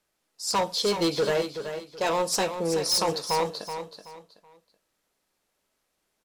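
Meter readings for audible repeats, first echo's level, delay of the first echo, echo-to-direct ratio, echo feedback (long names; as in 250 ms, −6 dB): 3, −9.0 dB, 377 ms, −8.5 dB, 29%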